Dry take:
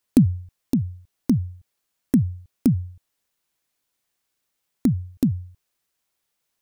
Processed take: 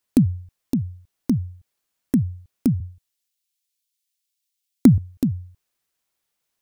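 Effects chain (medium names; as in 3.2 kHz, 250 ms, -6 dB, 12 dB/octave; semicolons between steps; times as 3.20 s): 2.80–4.98 s: three bands expanded up and down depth 100%; trim -1 dB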